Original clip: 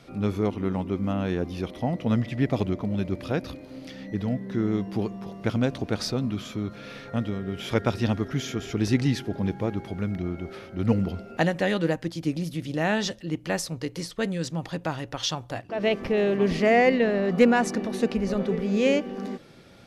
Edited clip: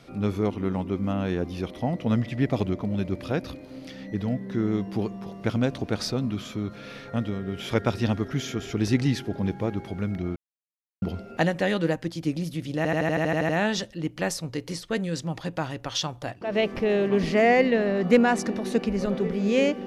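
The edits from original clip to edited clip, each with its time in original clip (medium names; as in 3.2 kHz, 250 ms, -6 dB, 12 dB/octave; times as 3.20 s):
10.36–11.02 s: mute
12.77 s: stutter 0.08 s, 10 plays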